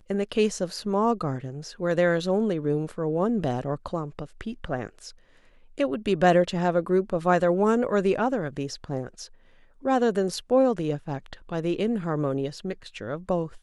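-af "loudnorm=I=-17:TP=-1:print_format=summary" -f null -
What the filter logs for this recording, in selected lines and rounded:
Input Integrated:    -26.4 LUFS
Input True Peak:      -7.3 dBTP
Input LRA:             5.7 LU
Input Threshold:     -36.9 LUFS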